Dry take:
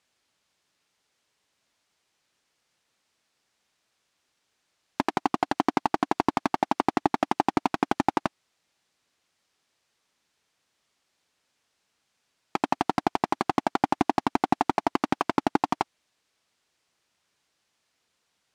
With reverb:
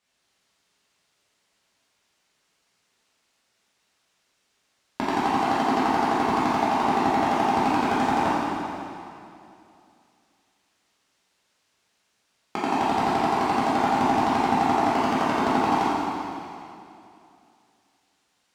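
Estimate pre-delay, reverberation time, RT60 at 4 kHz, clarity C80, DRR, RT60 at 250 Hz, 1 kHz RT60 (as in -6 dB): 5 ms, 2.6 s, 2.5 s, -1.5 dB, -9.5 dB, 2.6 s, 2.5 s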